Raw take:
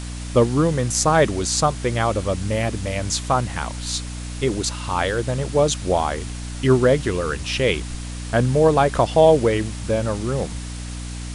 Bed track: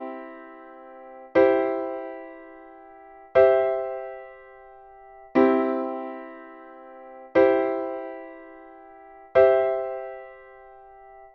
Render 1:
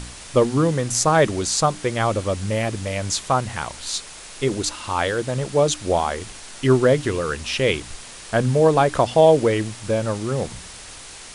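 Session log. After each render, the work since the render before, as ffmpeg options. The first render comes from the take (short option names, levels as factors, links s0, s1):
-af "bandreject=f=60:t=h:w=4,bandreject=f=120:t=h:w=4,bandreject=f=180:t=h:w=4,bandreject=f=240:t=h:w=4,bandreject=f=300:t=h:w=4"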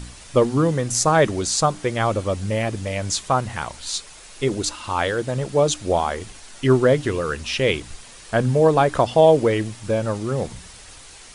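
-af "afftdn=nr=6:nf=-40"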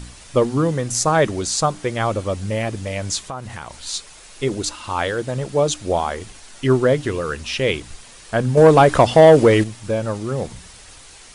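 -filter_complex "[0:a]asettb=1/sr,asplit=3[s0][s1][s2];[s0]atrim=end=3.194[s3];[s1]atrim=start=3.19:end=3.73,asetpts=PTS-STARTPTS,afade=t=in:d=0.004:c=qsin,afade=t=out:st=0.536:d=0.004:c=qsin,acompressor=threshold=0.0355:ratio=3:attack=3.2:release=140:knee=1:detection=peak[s4];[s2]atrim=start=3.726[s5];[s3][s4]acrossfade=d=0.004:c1=hsin:c2=qsin[s6];[s6][s5]acrossfade=d=0.004:c1=qsin:c2=hsin,asettb=1/sr,asplit=3[s7][s8][s9];[s7]atrim=end=8.574[s10];[s8]atrim=start=8.57:end=9.64,asetpts=PTS-STARTPTS,afade=t=in:d=0.004:c=qsin,afade=t=out:st=1.066:d=0.004:c=qsin,acontrast=86[s11];[s9]atrim=start=9.636[s12];[s10][s11]acrossfade=d=0.004:c1=hsin:c2=qsin[s13];[s13][s12]acrossfade=d=0.004:c1=qsin:c2=hsin"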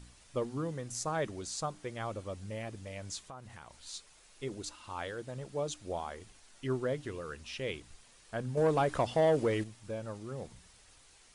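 -af "volume=0.133"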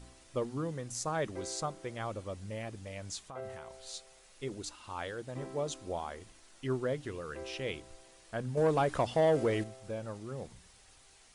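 -filter_complex "[1:a]volume=0.0422[s0];[0:a][s0]amix=inputs=2:normalize=0"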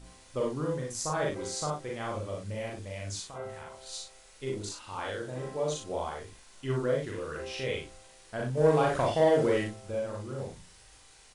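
-filter_complex "[0:a]asplit=2[s0][s1];[s1]adelay=38,volume=0.562[s2];[s0][s2]amix=inputs=2:normalize=0,asplit=2[s3][s4];[s4]aecho=0:1:40|60:0.668|0.668[s5];[s3][s5]amix=inputs=2:normalize=0"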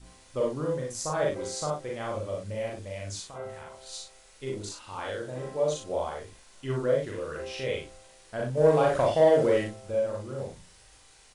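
-af "adynamicequalizer=threshold=0.00794:dfrequency=570:dqfactor=3.5:tfrequency=570:tqfactor=3.5:attack=5:release=100:ratio=0.375:range=3.5:mode=boostabove:tftype=bell"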